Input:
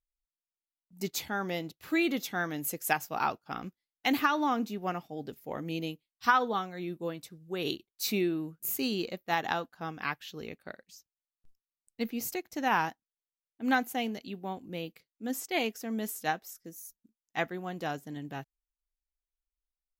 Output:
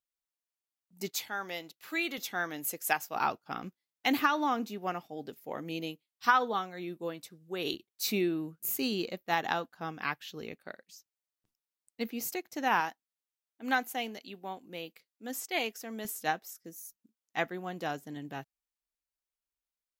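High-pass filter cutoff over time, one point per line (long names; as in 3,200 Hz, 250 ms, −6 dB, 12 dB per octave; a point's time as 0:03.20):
high-pass filter 6 dB per octave
290 Hz
from 0:01.11 930 Hz
from 0:02.18 440 Hz
from 0:03.15 120 Hz
from 0:04.30 260 Hz
from 0:07.74 110 Hz
from 0:10.59 230 Hz
from 0:12.80 520 Hz
from 0:16.05 160 Hz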